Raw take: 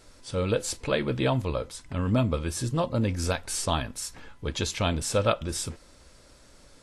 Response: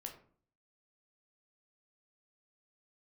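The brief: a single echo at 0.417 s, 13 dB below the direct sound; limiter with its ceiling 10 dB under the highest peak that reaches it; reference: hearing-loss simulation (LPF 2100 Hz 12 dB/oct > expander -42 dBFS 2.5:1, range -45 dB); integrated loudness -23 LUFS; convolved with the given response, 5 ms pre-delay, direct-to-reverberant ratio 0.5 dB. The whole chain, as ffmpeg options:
-filter_complex "[0:a]alimiter=limit=-19.5dB:level=0:latency=1,aecho=1:1:417:0.224,asplit=2[a][b];[1:a]atrim=start_sample=2205,adelay=5[c];[b][c]afir=irnorm=-1:irlink=0,volume=3dB[d];[a][d]amix=inputs=2:normalize=0,lowpass=2.1k,agate=range=-45dB:threshold=-42dB:ratio=2.5,volume=7dB"

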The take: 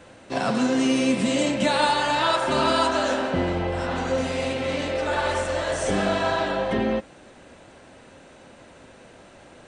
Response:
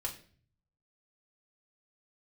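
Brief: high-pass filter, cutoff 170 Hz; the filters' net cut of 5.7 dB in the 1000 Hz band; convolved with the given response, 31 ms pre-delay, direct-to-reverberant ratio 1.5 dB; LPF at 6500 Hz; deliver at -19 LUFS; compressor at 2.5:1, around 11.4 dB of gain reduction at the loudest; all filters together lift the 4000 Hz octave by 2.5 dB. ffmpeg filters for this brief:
-filter_complex "[0:a]highpass=170,lowpass=6.5k,equalizer=f=1k:t=o:g=-7.5,equalizer=f=4k:t=o:g=4,acompressor=threshold=-37dB:ratio=2.5,asplit=2[a][b];[1:a]atrim=start_sample=2205,adelay=31[c];[b][c]afir=irnorm=-1:irlink=0,volume=-2.5dB[d];[a][d]amix=inputs=2:normalize=0,volume=13.5dB"

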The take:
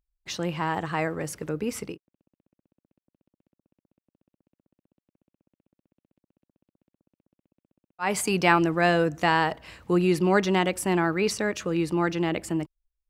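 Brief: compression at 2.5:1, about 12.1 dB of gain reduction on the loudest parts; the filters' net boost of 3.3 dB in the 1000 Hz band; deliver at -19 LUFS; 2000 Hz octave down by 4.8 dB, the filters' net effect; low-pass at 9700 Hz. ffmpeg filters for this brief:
-af "lowpass=9.7k,equalizer=f=1k:t=o:g=6,equalizer=f=2k:t=o:g=-8.5,acompressor=threshold=-34dB:ratio=2.5,volume=15.5dB"

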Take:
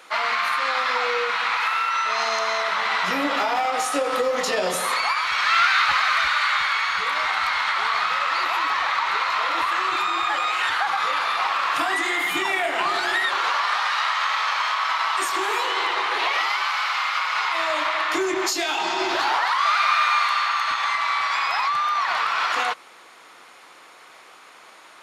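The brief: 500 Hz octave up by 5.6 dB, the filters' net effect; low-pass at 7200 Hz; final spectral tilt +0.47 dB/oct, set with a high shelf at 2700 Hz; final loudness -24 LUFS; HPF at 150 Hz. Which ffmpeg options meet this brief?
-af "highpass=150,lowpass=7.2k,equalizer=f=500:t=o:g=6.5,highshelf=f=2.7k:g=8.5,volume=-6dB"

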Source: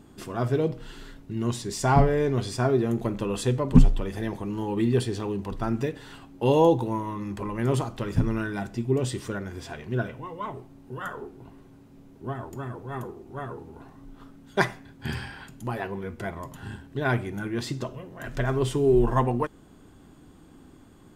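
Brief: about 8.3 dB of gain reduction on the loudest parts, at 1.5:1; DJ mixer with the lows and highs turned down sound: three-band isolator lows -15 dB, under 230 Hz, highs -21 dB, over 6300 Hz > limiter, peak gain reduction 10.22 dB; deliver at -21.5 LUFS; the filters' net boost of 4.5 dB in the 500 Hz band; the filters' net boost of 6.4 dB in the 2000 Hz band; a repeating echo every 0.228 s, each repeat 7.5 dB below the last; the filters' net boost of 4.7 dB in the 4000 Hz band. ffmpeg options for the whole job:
-filter_complex "[0:a]equalizer=f=500:t=o:g=6,equalizer=f=2k:t=o:g=7.5,equalizer=f=4k:t=o:g=4.5,acompressor=threshold=-32dB:ratio=1.5,acrossover=split=230 6300:gain=0.178 1 0.0891[a][b][c];[a][b][c]amix=inputs=3:normalize=0,aecho=1:1:228|456|684|912|1140:0.422|0.177|0.0744|0.0312|0.0131,volume=10.5dB,alimiter=limit=-8.5dB:level=0:latency=1"

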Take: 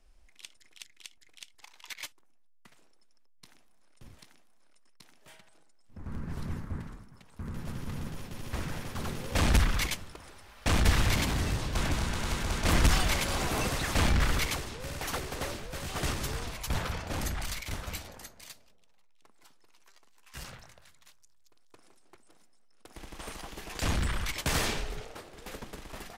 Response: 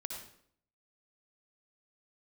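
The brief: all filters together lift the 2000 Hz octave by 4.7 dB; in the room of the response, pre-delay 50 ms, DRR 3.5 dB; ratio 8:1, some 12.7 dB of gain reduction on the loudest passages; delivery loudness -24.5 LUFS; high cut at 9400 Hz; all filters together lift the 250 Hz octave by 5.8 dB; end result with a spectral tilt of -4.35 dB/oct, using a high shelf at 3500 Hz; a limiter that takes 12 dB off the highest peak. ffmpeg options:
-filter_complex "[0:a]lowpass=9.4k,equalizer=f=250:t=o:g=7.5,equalizer=f=2k:t=o:g=8,highshelf=f=3.5k:g=-8,acompressor=threshold=-30dB:ratio=8,alimiter=level_in=6.5dB:limit=-24dB:level=0:latency=1,volume=-6.5dB,asplit=2[a][b];[1:a]atrim=start_sample=2205,adelay=50[c];[b][c]afir=irnorm=-1:irlink=0,volume=-2.5dB[d];[a][d]amix=inputs=2:normalize=0,volume=14.5dB"

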